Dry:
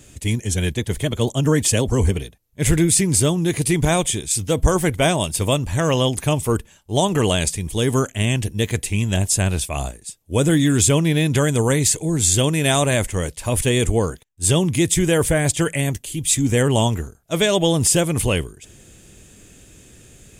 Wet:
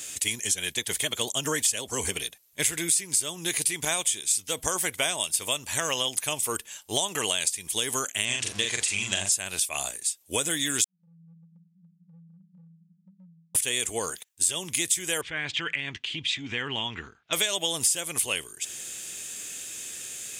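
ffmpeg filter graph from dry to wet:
-filter_complex "[0:a]asettb=1/sr,asplit=3[a][b][c];[a]atrim=end=8.254[d];[b]atrim=start=8.25:end=9.32,asetpts=PTS-STARTPTS,afade=t=in:d=0.004:c=qsin,afade=t=out:st=1.066:d=0.004:c=qsin,aeval=exprs='val(0)+0.5*0.0282*sgn(val(0))':c=same,lowpass=f=8.3k:w=0.5412,lowpass=f=8.3k:w=1.3066,asplit=2[e][f];[f]adelay=41,volume=-3dB[g];[e][g]amix=inputs=2:normalize=0,atrim=end_sample=47187[h];[c]atrim=start=9.316[i];[d][h]acrossfade=d=0.004:c1=hsin:c2=qsin[j];[j][i]acrossfade=d=0.004:c1=qsin:c2=hsin,asettb=1/sr,asplit=3[k][l][m];[k]atrim=end=10.844[n];[l]atrim=start=10.84:end=13.55,asetpts=PTS-STARTPTS,afade=t=in:d=0.004:c=qsin,afade=t=out:st=2.706:d=0.004:c=qsin,asuperpass=centerf=180:order=20:qfactor=5.4,acompressor=threshold=-39dB:ratio=8:attack=3.2:release=140:knee=1:detection=peak[o];[m]atrim=start=13.546[p];[n][o]acrossfade=d=0.004:c1=hsin:c2=qsin[q];[q][p]acrossfade=d=0.004:c1=qsin:c2=hsin,asettb=1/sr,asplit=3[r][s][t];[r]atrim=end=15.214[u];[s]atrim=start=15.21:end=17.33,asetpts=PTS-STARTPTS,afade=t=in:d=0.004:c=qsin,afade=t=out:st=2.116:d=0.004:c=qsin,lowpass=f=3.3k:w=0.5412,lowpass=f=3.3k:w=1.3066,equalizer=f=600:w=1.6:g=-12,acompressor=threshold=-25dB:ratio=2.5:attack=3.2:release=140:knee=1:detection=peak[v];[t]atrim=start=17.326[w];[u][v]acrossfade=d=0.004:c1=hsin:c2=qsin[x];[x][w]acrossfade=d=0.004:c1=qsin:c2=hsin,highpass=f=1.1k:p=1,highshelf=f=2.1k:g=9,acompressor=threshold=-31dB:ratio=4,volume=5dB"

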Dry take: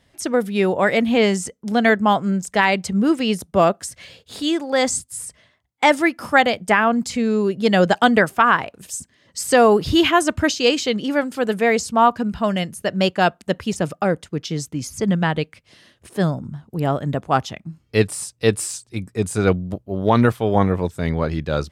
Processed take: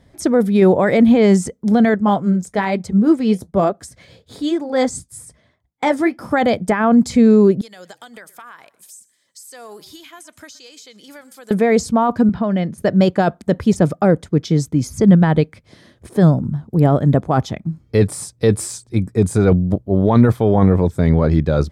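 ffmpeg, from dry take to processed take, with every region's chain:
-filter_complex "[0:a]asettb=1/sr,asplit=3[a][b][c];[a]atrim=end=1.944[d];[b]atrim=start=1.94:end=6.31,asetpts=PTS-STARTPTS,afade=t=in:d=0.004:c=qsin,afade=t=out:st=4.366:d=0.004:c=qsin,tremolo=f=5.9:d=0.33,flanger=delay=1.4:depth=8.9:regen=-60:speed=1.1:shape=triangular[e];[c]atrim=start=6.306[f];[d][e]acrossfade=d=0.004:c1=hsin:c2=qsin[g];[g][f]acrossfade=d=0.004:c1=qsin:c2=hsin,asettb=1/sr,asplit=3[h][i][j];[h]atrim=end=7.614[k];[i]atrim=start=7.61:end=11.51,asetpts=PTS-STARTPTS,afade=t=in:d=0.004:c=qsin,afade=t=out:st=3.896:d=0.004:c=qsin,aderivative,acompressor=threshold=-39dB:ratio=4:attack=3.2:release=140:knee=1:detection=peak,asplit=4[l][m][n][o];[m]adelay=121,afreqshift=-38,volume=-21dB[p];[n]adelay=242,afreqshift=-76,volume=-30.4dB[q];[o]adelay=363,afreqshift=-114,volume=-39.7dB[r];[l][p][q][r]amix=inputs=4:normalize=0,atrim=end_sample=171990[s];[j]atrim=start=11.506[t];[k][s]acrossfade=d=0.004:c1=hsin:c2=qsin[u];[u][t]acrossfade=d=0.004:c1=qsin:c2=hsin,asettb=1/sr,asplit=3[v][w][x];[v]atrim=end=12.294[y];[w]atrim=start=12.29:end=12.78,asetpts=PTS-STARTPTS,afade=t=in:d=0.004:c=qsin,afade=t=out:st=0.486:d=0.004:c=qsin,acompressor=threshold=-22dB:ratio=6:attack=3.2:release=140:knee=1:detection=peak,highpass=130,lowpass=4.1k[z];[x]atrim=start=12.776[aa];[y][z]acrossfade=d=0.004:c1=hsin:c2=qsin[ab];[ab][aa]acrossfade=d=0.004:c1=qsin:c2=hsin,alimiter=limit=-12.5dB:level=0:latency=1:release=10,tiltshelf=f=820:g=5.5,bandreject=f=2.8k:w=6.3,volume=5dB"

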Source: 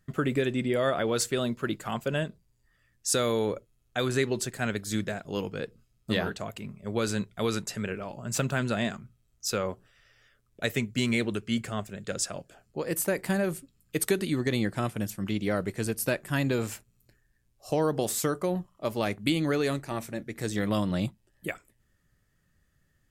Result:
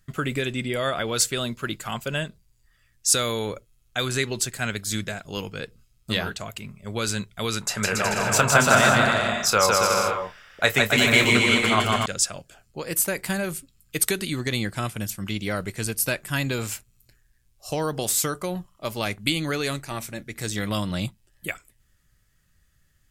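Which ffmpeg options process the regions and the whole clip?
-filter_complex "[0:a]asettb=1/sr,asplit=3[a][b][c];[a]atrim=end=7.614[d];[b]atrim=start=7.61:end=12.06,asetpts=PTS-STARTPTS,afade=t=in:d=0.004:c=qsin,afade=t=out:st=4.446:d=0.004:c=qsin,equalizer=f=940:w=0.7:g=13.5,asplit=2[e][f];[f]adelay=28,volume=-10.5dB[g];[e][g]amix=inputs=2:normalize=0,atrim=end_sample=196245,aecho=1:1:160|280|370|437.5|488.1|526.1|554.6|575.9:0.794|0.631|0.501|0.398|0.316|0.251|0.2|0.158,atrim=end_sample=196245[h];[c]atrim=start=12.056[i];[d][h]acrossfade=d=0.004:c1=hsin:c2=qsin[j];[j][i]acrossfade=d=0.004:c1=qsin:c2=hsin,equalizer=f=350:w=0.32:g=-10.5,bandreject=f=1.8k:w=20,volume=8.5dB"

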